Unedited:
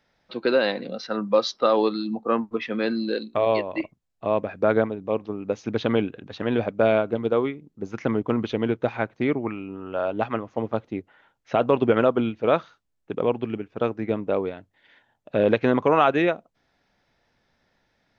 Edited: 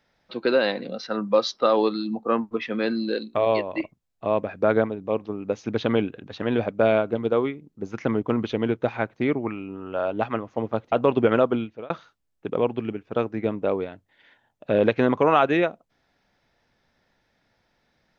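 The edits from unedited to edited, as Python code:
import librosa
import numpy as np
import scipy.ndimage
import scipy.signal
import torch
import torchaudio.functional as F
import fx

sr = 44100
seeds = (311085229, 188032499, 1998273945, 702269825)

y = fx.edit(x, sr, fx.cut(start_s=10.92, length_s=0.65),
    fx.fade_out_span(start_s=12.14, length_s=0.41), tone=tone)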